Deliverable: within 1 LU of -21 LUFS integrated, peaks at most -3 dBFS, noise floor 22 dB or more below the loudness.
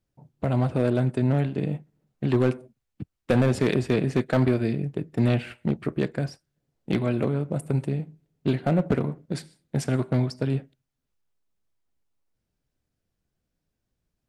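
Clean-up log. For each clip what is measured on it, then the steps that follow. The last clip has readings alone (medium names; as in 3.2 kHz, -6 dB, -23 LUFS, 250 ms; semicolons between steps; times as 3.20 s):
clipped samples 0.4%; clipping level -13.5 dBFS; loudness -26.0 LUFS; peak level -13.5 dBFS; loudness target -21.0 LUFS
-> clip repair -13.5 dBFS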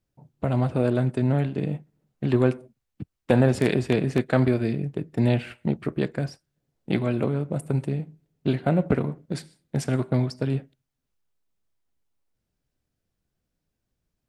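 clipped samples 0.0%; loudness -25.5 LUFS; peak level -5.5 dBFS; loudness target -21.0 LUFS
-> trim +4.5 dB; peak limiter -3 dBFS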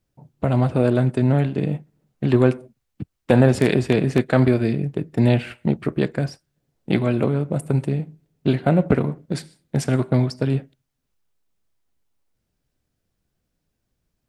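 loudness -21.0 LUFS; peak level -3.0 dBFS; noise floor -77 dBFS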